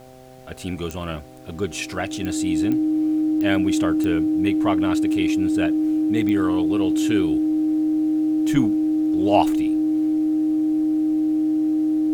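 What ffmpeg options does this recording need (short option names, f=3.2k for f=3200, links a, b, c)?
-af "adeclick=t=4,bandreject=f=128.9:t=h:w=4,bandreject=f=257.8:t=h:w=4,bandreject=f=386.7:t=h:w=4,bandreject=f=515.6:t=h:w=4,bandreject=f=644.5:t=h:w=4,bandreject=f=773.4:t=h:w=4,bandreject=f=310:w=30,agate=range=-21dB:threshold=-24dB"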